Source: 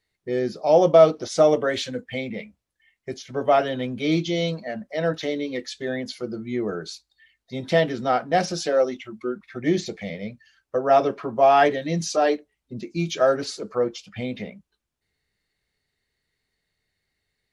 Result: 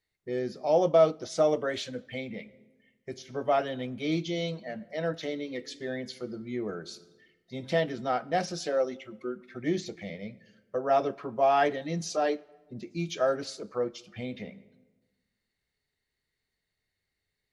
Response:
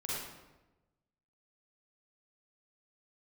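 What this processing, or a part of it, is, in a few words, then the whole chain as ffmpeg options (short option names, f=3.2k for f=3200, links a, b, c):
ducked reverb: -filter_complex "[0:a]asplit=3[a][b][c];[1:a]atrim=start_sample=2205[d];[b][d]afir=irnorm=-1:irlink=0[e];[c]apad=whole_len=772783[f];[e][f]sidechaincompress=threshold=-29dB:ratio=6:attack=27:release=1310,volume=-13dB[g];[a][g]amix=inputs=2:normalize=0,volume=-7.5dB"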